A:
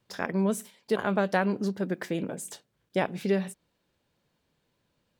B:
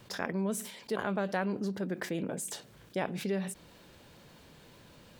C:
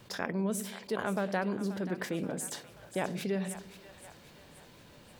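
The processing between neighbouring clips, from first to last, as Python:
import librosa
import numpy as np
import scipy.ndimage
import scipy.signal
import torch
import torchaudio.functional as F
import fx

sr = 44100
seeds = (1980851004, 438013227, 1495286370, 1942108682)

y1 = fx.env_flatten(x, sr, amount_pct=50)
y1 = F.gain(torch.from_numpy(y1), -8.0).numpy()
y2 = fx.echo_split(y1, sr, split_hz=590.0, low_ms=98, high_ms=531, feedback_pct=52, wet_db=-13.0)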